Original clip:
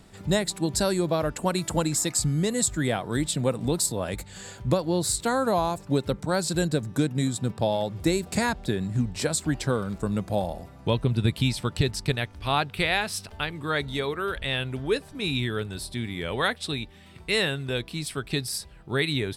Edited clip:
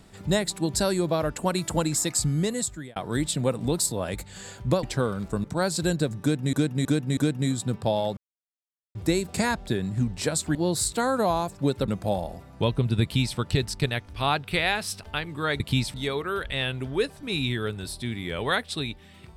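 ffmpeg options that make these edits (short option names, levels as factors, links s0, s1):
-filter_complex "[0:a]asplit=12[s0][s1][s2][s3][s4][s5][s6][s7][s8][s9][s10][s11];[s0]atrim=end=2.96,asetpts=PTS-STARTPTS,afade=t=out:st=2.42:d=0.54[s12];[s1]atrim=start=2.96:end=4.832,asetpts=PTS-STARTPTS,afade=t=in:d=0.004:c=hsin[s13];[s2]atrim=start=9.528:end=10.142[s14];[s3]atrim=start=6.158:end=7.252[s15];[s4]atrim=start=6.928:end=7.252[s16];[s5]atrim=start=6.928:end=7.252[s17];[s6]atrim=start=6.928:end=7.93,asetpts=PTS-STARTPTS,afade=t=out:st=0.998:d=0.004:c=hsin,apad=pad_dur=0.78[s18];[s7]atrim=start=7.93:end=9.532,asetpts=PTS-STARTPTS,afade=t=in:d=0.004:c=hsin[s19];[s8]atrim=start=4.828:end=6.162[s20];[s9]atrim=start=10.138:end=13.862[s21];[s10]atrim=start=11.288:end=11.632[s22];[s11]atrim=start=13.858[s23];[s12][s13]concat=n=2:v=0:a=1[s24];[s24][s14]acrossfade=d=0.004:c1=hsin:c2=hsin[s25];[s25][s15]acrossfade=d=0.004:c1=hsin:c2=hsin[s26];[s26][s16]acrossfade=d=0.004:c1=hsin:c2=hsin[s27];[s27][s17]acrossfade=d=0.004:c1=hsin:c2=hsin[s28];[s18][s19]concat=n=2:v=0:a=1[s29];[s28][s29]acrossfade=d=0.004:c1=hsin:c2=hsin[s30];[s30][s20]acrossfade=d=0.004:c1=hsin:c2=hsin[s31];[s31][s21]acrossfade=d=0.004:c1=hsin:c2=hsin[s32];[s32][s22]acrossfade=d=0.004:c1=hsin:c2=hsin[s33];[s33][s23]acrossfade=d=0.004:c1=hsin:c2=hsin"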